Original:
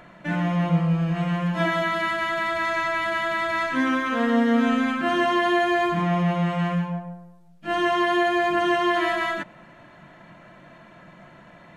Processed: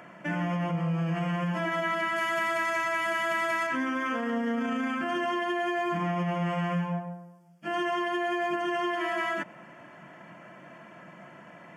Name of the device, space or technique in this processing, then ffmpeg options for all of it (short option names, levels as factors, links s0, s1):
PA system with an anti-feedback notch: -filter_complex "[0:a]highpass=160,asuperstop=centerf=3900:order=4:qfactor=3.2,alimiter=limit=0.0794:level=0:latency=1:release=89,asettb=1/sr,asplit=3[s0][s1][s2];[s0]atrim=end=2.164[s3];[s1]atrim=start=2.16:end=3.67,asetpts=PTS-STARTPTS,afade=t=in:d=0.004:c=qsin,afade=t=out:st=1.506:d=0.004:c=qsin,aemphasis=mode=production:type=cd[s4];[s2]atrim=start=3.666[s5];[s3][s4]acrossfade=d=0.004:c1=hsin:c2=qsin[s6];[s6][s5]acrossfade=d=0.004:c1=qsin:c2=hsin"